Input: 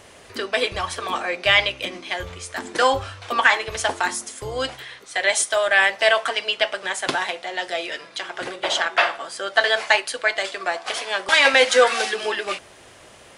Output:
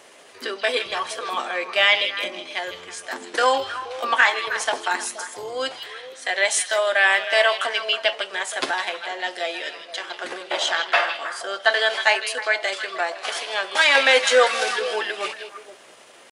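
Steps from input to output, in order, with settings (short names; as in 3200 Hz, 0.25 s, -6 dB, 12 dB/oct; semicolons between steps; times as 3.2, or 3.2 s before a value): HPF 300 Hz 12 dB/oct; tempo 0.82×; delay with a stepping band-pass 0.158 s, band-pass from 3500 Hz, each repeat -1.4 oct, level -6 dB; gain -1 dB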